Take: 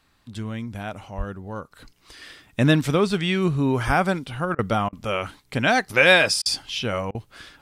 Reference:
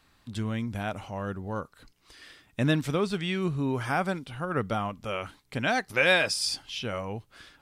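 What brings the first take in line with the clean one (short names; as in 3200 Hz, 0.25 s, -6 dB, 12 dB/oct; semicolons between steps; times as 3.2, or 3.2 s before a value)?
1.17–1.29 HPF 140 Hz 24 dB/oct; 3.86–3.98 HPF 140 Hz 24 dB/oct; interpolate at 4.55/4.89/6.42/7.11, 36 ms; 1.71 gain correction -7 dB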